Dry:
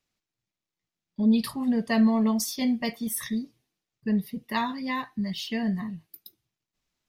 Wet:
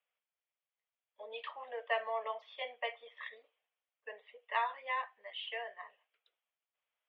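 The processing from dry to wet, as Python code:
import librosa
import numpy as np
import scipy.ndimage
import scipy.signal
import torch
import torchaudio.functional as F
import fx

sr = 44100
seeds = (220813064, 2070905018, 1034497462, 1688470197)

y = scipy.signal.sosfilt(scipy.signal.cheby1(5, 1.0, [480.0, 3300.0], 'bandpass', fs=sr, output='sos'), x)
y = F.gain(torch.from_numpy(y), -3.5).numpy()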